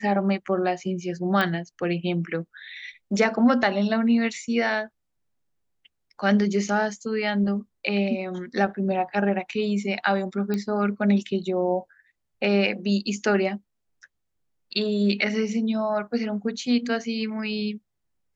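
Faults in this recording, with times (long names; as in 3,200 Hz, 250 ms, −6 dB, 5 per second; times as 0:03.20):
0:01.41: click −12 dBFS
0:10.54: click −15 dBFS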